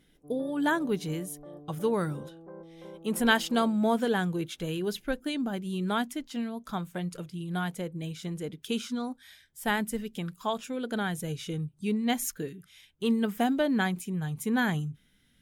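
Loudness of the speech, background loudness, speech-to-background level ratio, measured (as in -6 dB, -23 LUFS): -31.0 LUFS, -47.5 LUFS, 16.5 dB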